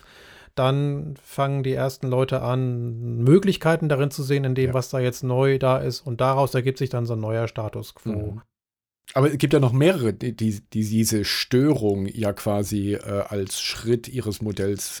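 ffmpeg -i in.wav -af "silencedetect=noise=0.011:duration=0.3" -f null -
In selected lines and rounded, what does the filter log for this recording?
silence_start: 8.40
silence_end: 9.08 | silence_duration: 0.68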